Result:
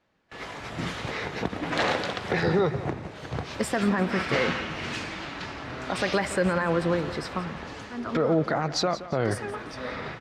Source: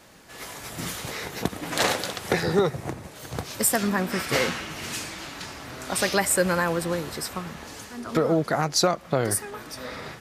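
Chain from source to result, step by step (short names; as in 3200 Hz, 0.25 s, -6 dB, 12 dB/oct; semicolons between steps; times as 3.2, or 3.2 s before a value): gate with hold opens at -33 dBFS; LPF 3300 Hz 12 dB/oct; limiter -17 dBFS, peak gain reduction 8 dB; on a send: feedback echo 0.173 s, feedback 34%, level -15 dB; on the sum: gain +2.5 dB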